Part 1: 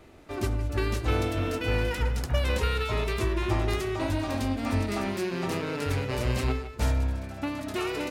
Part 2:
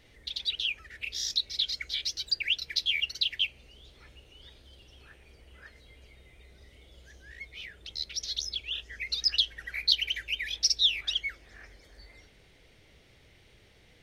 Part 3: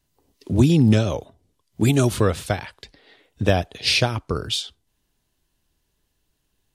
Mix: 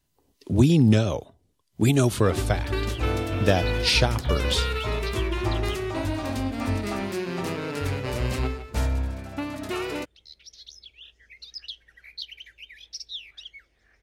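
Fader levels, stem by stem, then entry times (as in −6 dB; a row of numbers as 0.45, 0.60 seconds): +0.5, −12.5, −2.0 decibels; 1.95, 2.30, 0.00 seconds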